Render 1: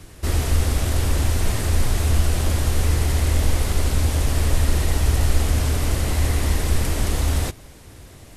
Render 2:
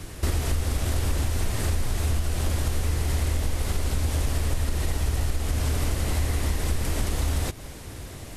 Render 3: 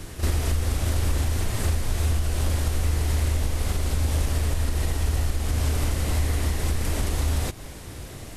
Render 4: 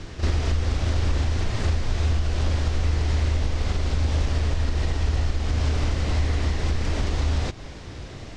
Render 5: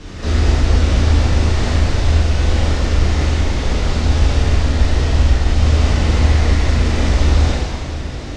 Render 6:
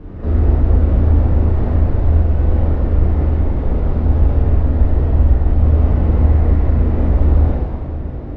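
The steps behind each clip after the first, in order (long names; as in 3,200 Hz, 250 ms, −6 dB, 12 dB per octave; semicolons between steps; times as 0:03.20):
downward compressor 6 to 1, threshold −26 dBFS, peak gain reduction 15 dB; level +4.5 dB
backwards echo 38 ms −9 dB
low-pass filter 5,900 Hz 24 dB per octave; level +1 dB
dense smooth reverb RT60 2.3 s, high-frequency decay 0.9×, DRR −9 dB
Bessel low-pass filter 650 Hz, order 2; level +1 dB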